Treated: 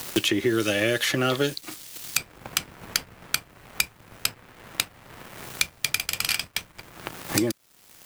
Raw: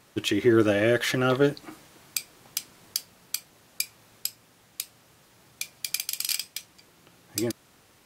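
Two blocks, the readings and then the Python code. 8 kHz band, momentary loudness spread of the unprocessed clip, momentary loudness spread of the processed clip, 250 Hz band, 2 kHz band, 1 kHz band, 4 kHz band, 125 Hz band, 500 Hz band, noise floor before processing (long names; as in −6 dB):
+3.5 dB, 17 LU, 15 LU, −1.5 dB, +4.5 dB, +1.5 dB, +5.5 dB, −1.0 dB, −2.5 dB, −59 dBFS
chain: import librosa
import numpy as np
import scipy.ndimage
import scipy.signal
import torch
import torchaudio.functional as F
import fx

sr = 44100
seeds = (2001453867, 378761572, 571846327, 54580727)

y = fx.dmg_noise_colour(x, sr, seeds[0], colour='white', level_db=-57.0)
y = np.sign(y) * np.maximum(np.abs(y) - 10.0 ** (-50.5 / 20.0), 0.0)
y = fx.band_squash(y, sr, depth_pct=100)
y = F.gain(torch.from_numpy(y), 3.0).numpy()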